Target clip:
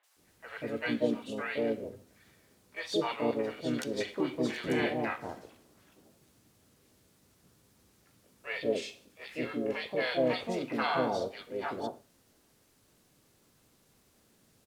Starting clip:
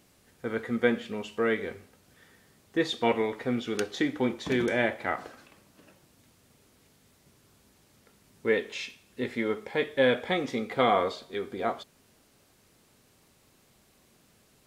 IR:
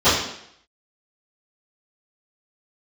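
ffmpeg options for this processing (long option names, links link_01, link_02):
-filter_complex "[0:a]acrossover=split=680|2300[link_01][link_02][link_03];[link_03]adelay=40[link_04];[link_01]adelay=190[link_05];[link_05][link_02][link_04]amix=inputs=3:normalize=0,asplit=2[link_06][link_07];[1:a]atrim=start_sample=2205,atrim=end_sample=6615[link_08];[link_07][link_08]afir=irnorm=-1:irlink=0,volume=-45.5dB[link_09];[link_06][link_09]amix=inputs=2:normalize=0,asplit=2[link_10][link_11];[link_11]asetrate=55563,aresample=44100,atempo=0.793701,volume=-2dB[link_12];[link_10][link_12]amix=inputs=2:normalize=0,volume=-5dB"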